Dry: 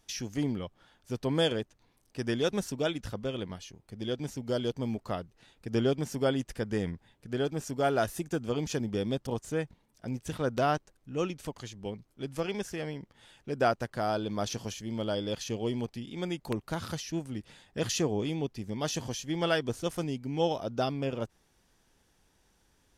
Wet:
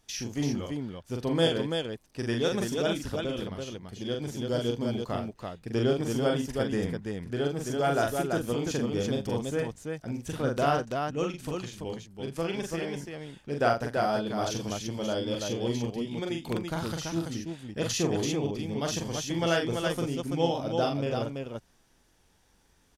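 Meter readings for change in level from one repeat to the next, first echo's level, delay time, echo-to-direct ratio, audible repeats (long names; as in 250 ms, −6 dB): repeats not evenly spaced, −3.5 dB, 42 ms, −0.5 dB, 3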